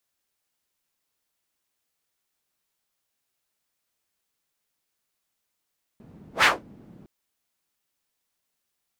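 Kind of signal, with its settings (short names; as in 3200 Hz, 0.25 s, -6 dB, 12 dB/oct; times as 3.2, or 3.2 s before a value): whoosh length 1.06 s, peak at 0.44, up 0.12 s, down 0.21 s, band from 200 Hz, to 1900 Hz, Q 1.9, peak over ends 33 dB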